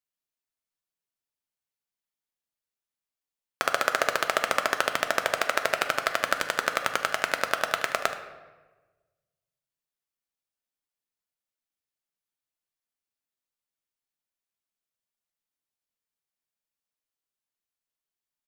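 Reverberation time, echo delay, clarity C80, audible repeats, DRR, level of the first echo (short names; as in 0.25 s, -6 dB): 1.3 s, 76 ms, 11.5 dB, 1, 6.0 dB, -14.0 dB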